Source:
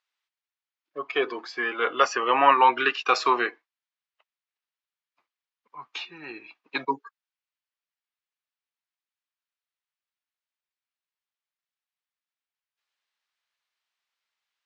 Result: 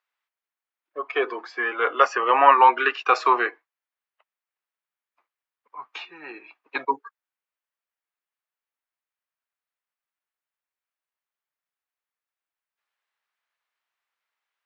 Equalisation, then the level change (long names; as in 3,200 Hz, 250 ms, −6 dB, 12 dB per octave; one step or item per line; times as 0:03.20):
three-way crossover with the lows and the highs turned down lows −18 dB, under 330 Hz, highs −16 dB, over 2,300 Hz
low-shelf EQ 100 Hz +6 dB
high-shelf EQ 5,900 Hz +12 dB
+3.5 dB